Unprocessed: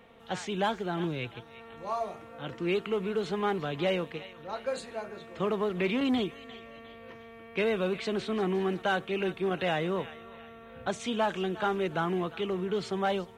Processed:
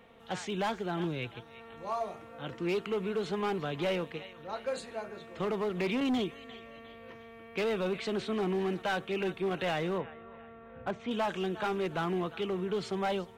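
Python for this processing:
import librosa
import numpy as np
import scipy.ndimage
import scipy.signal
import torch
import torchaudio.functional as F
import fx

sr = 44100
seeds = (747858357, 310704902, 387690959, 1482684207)

y = fx.lowpass(x, sr, hz=1900.0, slope=12, at=(9.98, 11.11))
y = np.clip(10.0 ** (24.5 / 20.0) * y, -1.0, 1.0) / 10.0 ** (24.5 / 20.0)
y = y * 10.0 ** (-1.5 / 20.0)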